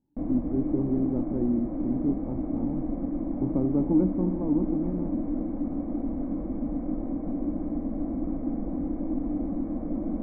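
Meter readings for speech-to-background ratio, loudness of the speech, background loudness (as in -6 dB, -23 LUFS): 2.5 dB, -29.0 LUFS, -31.5 LUFS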